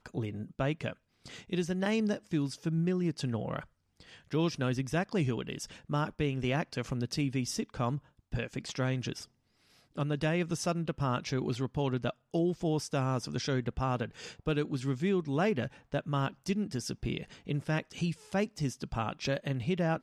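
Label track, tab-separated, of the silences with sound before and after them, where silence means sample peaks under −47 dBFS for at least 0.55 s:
9.250000	9.960000	silence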